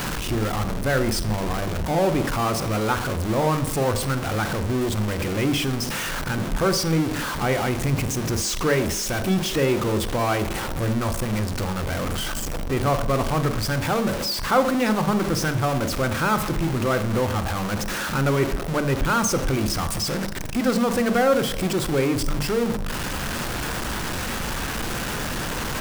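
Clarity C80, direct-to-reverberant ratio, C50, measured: 16.5 dB, 10.5 dB, 13.0 dB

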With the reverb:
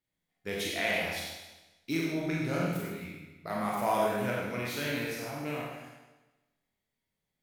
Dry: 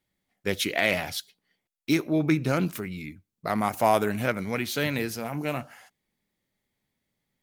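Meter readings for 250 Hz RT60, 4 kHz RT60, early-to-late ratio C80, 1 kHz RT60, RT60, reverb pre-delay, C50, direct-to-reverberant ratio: 1.1 s, 1.1 s, 1.5 dB, 1.1 s, 1.1 s, 24 ms, -1.0 dB, -4.5 dB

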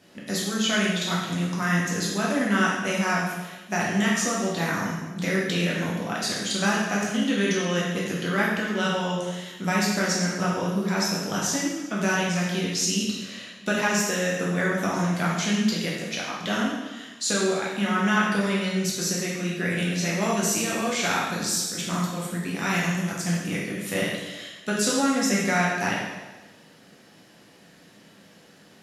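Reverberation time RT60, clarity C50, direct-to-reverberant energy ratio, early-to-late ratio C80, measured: 1.2 s, 0.5 dB, -5.5 dB, 3.5 dB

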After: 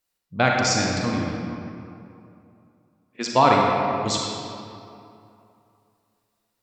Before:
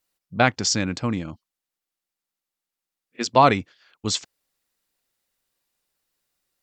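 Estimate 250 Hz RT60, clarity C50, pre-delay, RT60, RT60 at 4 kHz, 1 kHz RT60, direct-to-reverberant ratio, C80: 2.7 s, -0.5 dB, 35 ms, 2.7 s, 1.6 s, 2.7 s, -1.5 dB, 1.0 dB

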